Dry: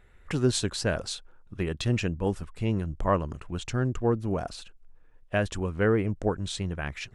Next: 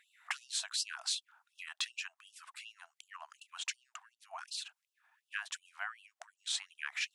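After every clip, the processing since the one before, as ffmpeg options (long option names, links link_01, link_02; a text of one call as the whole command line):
ffmpeg -i in.wav -af "acompressor=threshold=-32dB:ratio=5,afftfilt=real='re*gte(b*sr/1024,630*pow(2700/630,0.5+0.5*sin(2*PI*2.7*pts/sr)))':imag='im*gte(b*sr/1024,630*pow(2700/630,0.5+0.5*sin(2*PI*2.7*pts/sr)))':win_size=1024:overlap=0.75,volume=3dB" out.wav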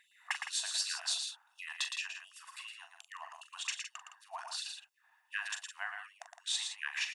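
ffmpeg -i in.wav -filter_complex "[0:a]aecho=1:1:1.1:0.44,asplit=2[link_01][link_02];[link_02]aecho=0:1:40.82|113.7|163.3:0.355|0.501|0.316[link_03];[link_01][link_03]amix=inputs=2:normalize=0" out.wav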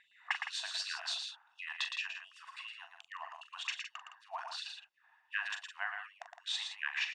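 ffmpeg -i in.wav -af "lowpass=3700,volume=2dB" out.wav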